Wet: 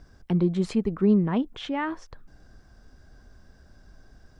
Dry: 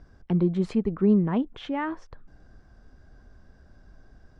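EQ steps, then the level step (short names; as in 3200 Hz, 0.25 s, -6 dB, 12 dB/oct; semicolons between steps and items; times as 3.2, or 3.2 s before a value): high shelf 3700 Hz +11 dB; 0.0 dB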